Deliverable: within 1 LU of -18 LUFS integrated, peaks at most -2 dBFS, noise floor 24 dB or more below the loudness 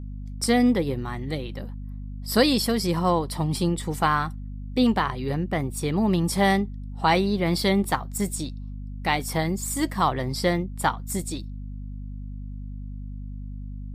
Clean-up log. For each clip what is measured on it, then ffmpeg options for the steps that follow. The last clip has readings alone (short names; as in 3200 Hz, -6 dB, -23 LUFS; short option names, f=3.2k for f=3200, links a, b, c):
hum 50 Hz; harmonics up to 250 Hz; hum level -32 dBFS; loudness -24.5 LUFS; peak -6.5 dBFS; loudness target -18.0 LUFS
-> -af "bandreject=f=50:t=h:w=4,bandreject=f=100:t=h:w=4,bandreject=f=150:t=h:w=4,bandreject=f=200:t=h:w=4,bandreject=f=250:t=h:w=4"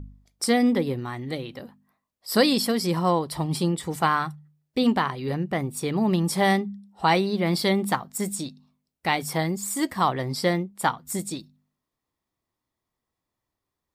hum none; loudness -25.0 LUFS; peak -6.5 dBFS; loudness target -18.0 LUFS
-> -af "volume=7dB,alimiter=limit=-2dB:level=0:latency=1"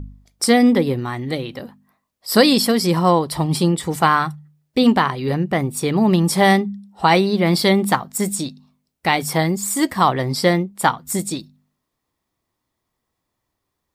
loudness -18.0 LUFS; peak -2.0 dBFS; noise floor -78 dBFS